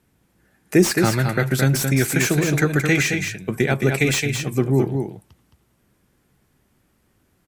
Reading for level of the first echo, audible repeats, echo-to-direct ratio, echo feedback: -5.5 dB, 1, -5.5 dB, no regular repeats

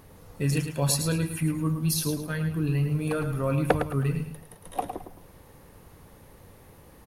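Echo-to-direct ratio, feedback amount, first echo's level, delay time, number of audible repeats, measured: -7.5 dB, 29%, -8.0 dB, 108 ms, 3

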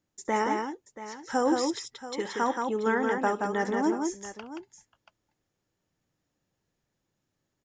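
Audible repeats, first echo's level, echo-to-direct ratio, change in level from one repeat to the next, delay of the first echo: 3, -17.5 dB, -3.5 dB, no regular repeats, 68 ms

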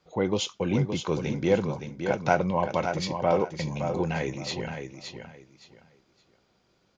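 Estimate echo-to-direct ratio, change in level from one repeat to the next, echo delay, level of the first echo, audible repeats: -7.0 dB, -13.0 dB, 568 ms, -7.0 dB, 3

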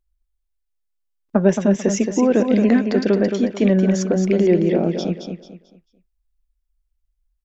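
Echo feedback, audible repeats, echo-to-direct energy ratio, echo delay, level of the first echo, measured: 31%, 3, -6.0 dB, 221 ms, -6.5 dB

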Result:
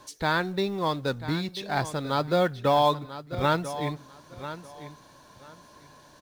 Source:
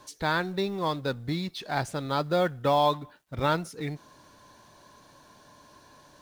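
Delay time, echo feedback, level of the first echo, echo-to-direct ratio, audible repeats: 992 ms, 21%, -13.0 dB, -13.0 dB, 2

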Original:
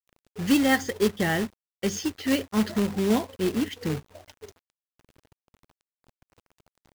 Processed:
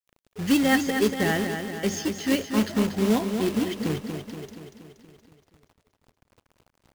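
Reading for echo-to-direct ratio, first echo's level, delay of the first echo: -5.0 dB, -7.0 dB, 237 ms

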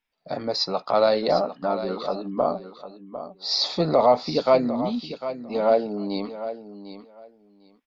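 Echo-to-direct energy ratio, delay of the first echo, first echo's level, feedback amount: -12.0 dB, 751 ms, -12.0 dB, 17%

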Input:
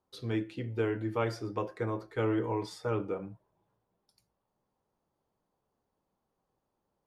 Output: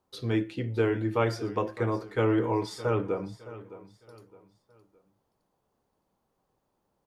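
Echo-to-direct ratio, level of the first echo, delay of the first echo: -15.5 dB, -16.0 dB, 614 ms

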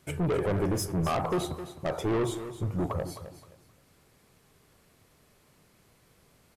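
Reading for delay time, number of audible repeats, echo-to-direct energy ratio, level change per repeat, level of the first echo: 261 ms, 2, -11.5 dB, -12.0 dB, -12.0 dB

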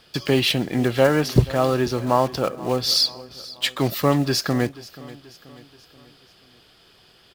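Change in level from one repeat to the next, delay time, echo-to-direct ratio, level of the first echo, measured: -6.0 dB, 482 ms, -18.0 dB, -19.0 dB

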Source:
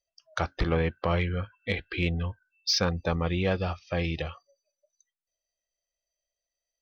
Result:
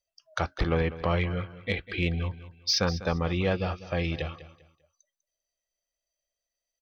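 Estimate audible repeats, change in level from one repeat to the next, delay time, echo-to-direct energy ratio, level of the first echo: 2, -11.0 dB, 198 ms, -15.0 dB, -15.5 dB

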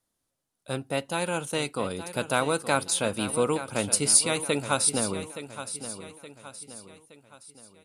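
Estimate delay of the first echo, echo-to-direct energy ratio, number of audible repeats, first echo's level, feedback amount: 870 ms, -11.0 dB, 4, -12.0 dB, 44%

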